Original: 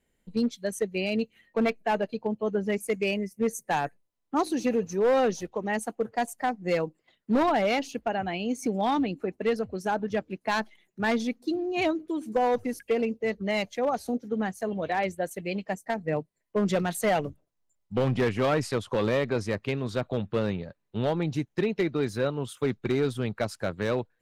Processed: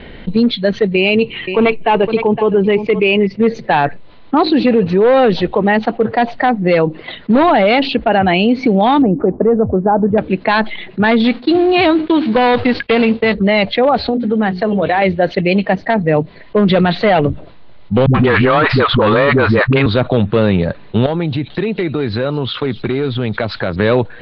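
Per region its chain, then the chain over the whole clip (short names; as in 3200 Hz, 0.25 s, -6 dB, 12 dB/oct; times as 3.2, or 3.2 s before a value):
0.96–3.27 ripple EQ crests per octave 0.7, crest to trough 8 dB + echo 0.512 s -21.5 dB
9.02–10.18 LPF 1100 Hz 24 dB/oct + upward compressor, threshold -37 dBFS
11.23–13.32 spectral whitening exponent 0.6 + expander -46 dBFS
14–15.02 LPF 5400 Hz 24 dB/oct + compressor 2:1, threshold -36 dBFS + notches 60/120/180/240/300/360/420 Hz
18.06–19.86 bell 1300 Hz +10 dB 1.1 oct + sample leveller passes 1 + dispersion highs, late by 84 ms, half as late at 310 Hz
21.06–23.76 compressor 3:1, threshold -43 dBFS + thin delay 0.22 s, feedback 61%, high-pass 5400 Hz, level -11 dB
whole clip: steep low-pass 4300 Hz 72 dB/oct; maximiser +21 dB; fast leveller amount 50%; gain -5 dB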